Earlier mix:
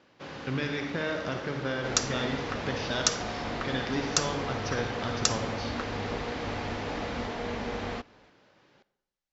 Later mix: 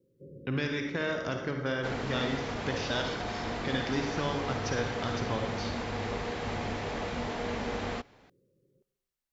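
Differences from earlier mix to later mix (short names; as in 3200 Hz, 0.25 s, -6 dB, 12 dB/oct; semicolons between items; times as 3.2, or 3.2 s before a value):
first sound: add rippled Chebyshev low-pass 550 Hz, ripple 9 dB; master: remove LPF 6700 Hz 24 dB/oct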